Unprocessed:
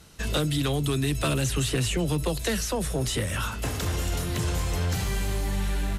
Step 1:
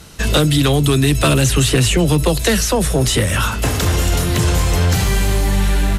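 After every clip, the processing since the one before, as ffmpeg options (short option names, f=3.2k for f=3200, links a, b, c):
-af "acontrast=63,volume=5.5dB"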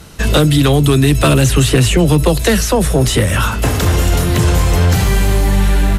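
-af "equalizer=f=5.9k:t=o:w=2.7:g=-4,volume=3.5dB"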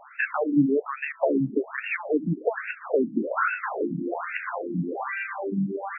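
-af "alimiter=limit=-10dB:level=0:latency=1:release=242,afftfilt=real='re*between(b*sr/1024,230*pow(2000/230,0.5+0.5*sin(2*PI*1.2*pts/sr))/1.41,230*pow(2000/230,0.5+0.5*sin(2*PI*1.2*pts/sr))*1.41)':imag='im*between(b*sr/1024,230*pow(2000/230,0.5+0.5*sin(2*PI*1.2*pts/sr))/1.41,230*pow(2000/230,0.5+0.5*sin(2*PI*1.2*pts/sr))*1.41)':win_size=1024:overlap=0.75,volume=2dB"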